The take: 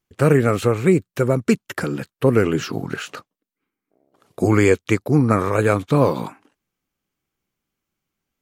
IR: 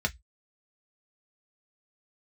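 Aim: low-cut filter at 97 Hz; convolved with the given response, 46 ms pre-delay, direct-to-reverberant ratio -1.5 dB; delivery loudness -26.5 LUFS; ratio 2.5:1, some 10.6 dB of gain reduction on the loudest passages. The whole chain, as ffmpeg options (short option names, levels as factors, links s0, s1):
-filter_complex "[0:a]highpass=97,acompressor=threshold=0.0447:ratio=2.5,asplit=2[s0][s1];[1:a]atrim=start_sample=2205,adelay=46[s2];[s1][s2]afir=irnorm=-1:irlink=0,volume=0.501[s3];[s0][s3]amix=inputs=2:normalize=0,volume=0.794"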